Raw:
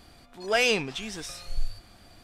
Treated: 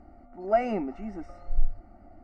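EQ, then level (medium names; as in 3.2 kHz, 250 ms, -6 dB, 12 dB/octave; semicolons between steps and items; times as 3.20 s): Savitzky-Golay filter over 65 samples; distance through air 75 m; static phaser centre 690 Hz, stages 8; +5.5 dB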